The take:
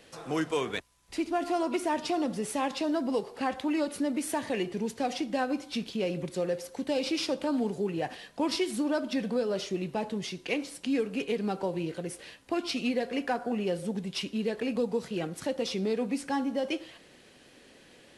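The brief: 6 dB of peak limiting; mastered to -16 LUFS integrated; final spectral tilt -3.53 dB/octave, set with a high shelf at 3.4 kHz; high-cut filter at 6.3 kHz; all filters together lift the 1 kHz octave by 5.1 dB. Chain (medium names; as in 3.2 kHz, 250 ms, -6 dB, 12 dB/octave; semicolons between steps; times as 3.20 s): low-pass 6.3 kHz; peaking EQ 1 kHz +6.5 dB; treble shelf 3.4 kHz +4 dB; trim +15.5 dB; peak limiter -5 dBFS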